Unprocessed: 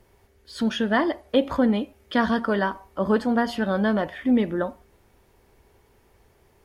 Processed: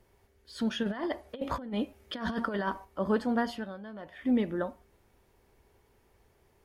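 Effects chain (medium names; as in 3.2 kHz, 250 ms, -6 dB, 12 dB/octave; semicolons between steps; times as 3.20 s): 0.83–2.85 s: compressor with a negative ratio -25 dBFS, ratio -0.5; 3.48–4.27 s: dip -16 dB, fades 0.38 s quadratic; trim -6.5 dB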